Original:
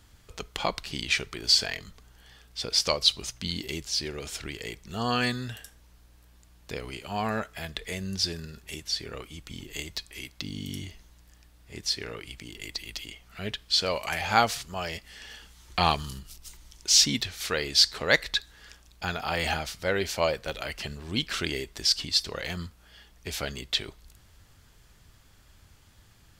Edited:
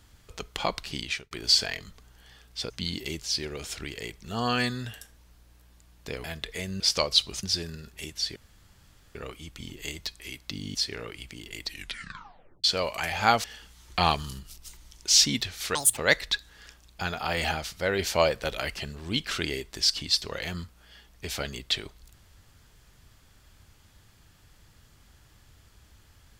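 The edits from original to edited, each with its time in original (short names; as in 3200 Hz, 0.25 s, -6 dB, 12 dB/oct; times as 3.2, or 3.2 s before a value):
0.96–1.31 fade out
2.7–3.33 move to 8.13
6.87–7.57 cut
9.06 insert room tone 0.79 s
10.66–11.84 cut
12.74 tape stop 0.99 s
14.53–15.24 cut
17.55–18 speed 200%
20.02–20.77 gain +3 dB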